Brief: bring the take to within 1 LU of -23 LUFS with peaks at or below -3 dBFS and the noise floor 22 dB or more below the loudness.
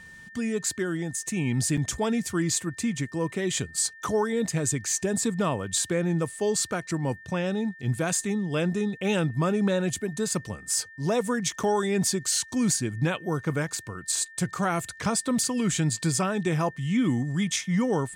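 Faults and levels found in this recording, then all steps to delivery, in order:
dropouts 2; longest dropout 5.2 ms; steady tone 1.8 kHz; tone level -45 dBFS; loudness -27.0 LUFS; peak level -13.5 dBFS; loudness target -23.0 LUFS
-> interpolate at 1.77/11.63 s, 5.2 ms; band-stop 1.8 kHz, Q 30; trim +4 dB

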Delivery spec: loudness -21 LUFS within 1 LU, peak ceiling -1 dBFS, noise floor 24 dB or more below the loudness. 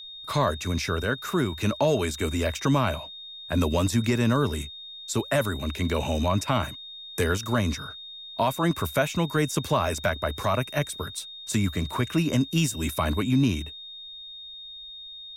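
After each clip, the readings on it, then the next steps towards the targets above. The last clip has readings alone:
steady tone 3.7 kHz; tone level -39 dBFS; loudness -26.5 LUFS; peak level -12.5 dBFS; loudness target -21.0 LUFS
-> band-stop 3.7 kHz, Q 30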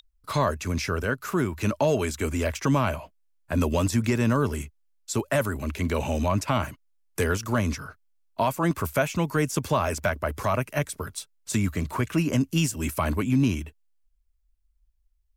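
steady tone not found; loudness -26.5 LUFS; peak level -13.0 dBFS; loudness target -21.0 LUFS
-> trim +5.5 dB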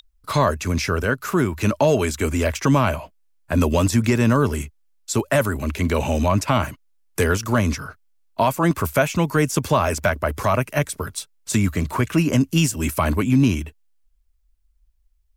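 loudness -21.0 LUFS; peak level -7.5 dBFS; noise floor -62 dBFS

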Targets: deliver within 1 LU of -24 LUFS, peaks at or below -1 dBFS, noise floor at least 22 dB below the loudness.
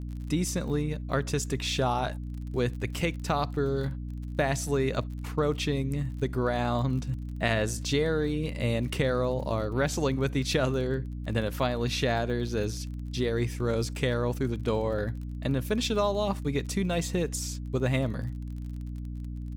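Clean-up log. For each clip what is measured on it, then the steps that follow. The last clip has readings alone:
tick rate 35 per s; hum 60 Hz; highest harmonic 300 Hz; hum level -33 dBFS; loudness -29.5 LUFS; peak level -11.0 dBFS; loudness target -24.0 LUFS
-> de-click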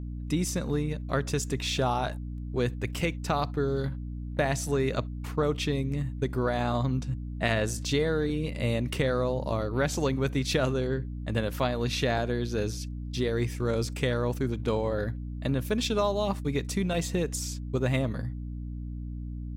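tick rate 0.15 per s; hum 60 Hz; highest harmonic 300 Hz; hum level -33 dBFS
-> de-hum 60 Hz, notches 5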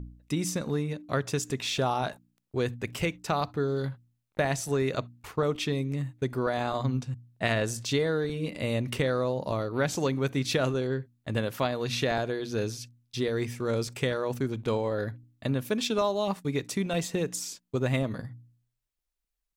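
hum not found; loudness -30.0 LUFS; peak level -11.0 dBFS; loudness target -24.0 LUFS
-> trim +6 dB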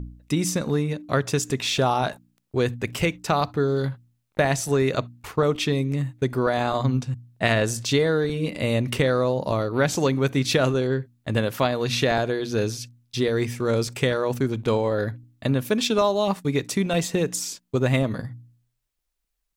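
loudness -24.0 LUFS; peak level -5.0 dBFS; noise floor -76 dBFS

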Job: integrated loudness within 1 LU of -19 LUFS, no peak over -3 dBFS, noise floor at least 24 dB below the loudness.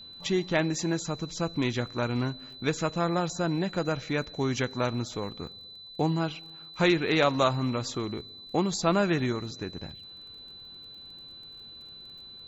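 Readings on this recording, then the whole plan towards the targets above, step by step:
tick rate 28 per s; steady tone 4 kHz; tone level -44 dBFS; loudness -29.0 LUFS; peak level -10.0 dBFS; loudness target -19.0 LUFS
-> de-click; band-stop 4 kHz, Q 30; trim +10 dB; peak limiter -3 dBFS

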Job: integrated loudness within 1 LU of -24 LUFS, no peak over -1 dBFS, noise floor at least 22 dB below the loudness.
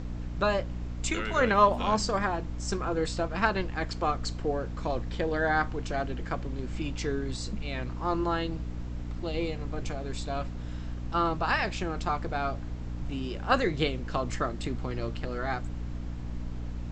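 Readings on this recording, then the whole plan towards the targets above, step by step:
hum 60 Hz; highest harmonic 300 Hz; hum level -34 dBFS; noise floor -36 dBFS; noise floor target -53 dBFS; loudness -31.0 LUFS; peak level -8.5 dBFS; loudness target -24.0 LUFS
-> hum notches 60/120/180/240/300 Hz; noise print and reduce 17 dB; trim +7 dB

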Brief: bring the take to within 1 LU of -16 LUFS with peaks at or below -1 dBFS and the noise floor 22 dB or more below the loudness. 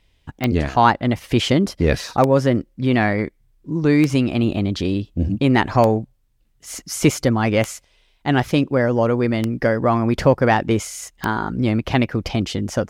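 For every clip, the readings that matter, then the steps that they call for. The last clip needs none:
clicks found 7; loudness -19.5 LUFS; peak level -2.0 dBFS; loudness target -16.0 LUFS
-> de-click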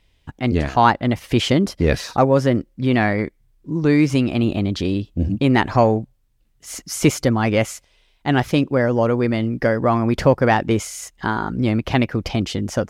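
clicks found 0; loudness -19.5 LUFS; peak level -2.0 dBFS; loudness target -16.0 LUFS
-> trim +3.5 dB; peak limiter -1 dBFS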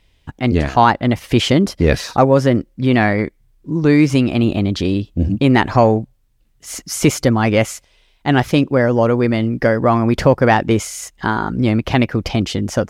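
loudness -16.0 LUFS; peak level -1.0 dBFS; noise floor -57 dBFS

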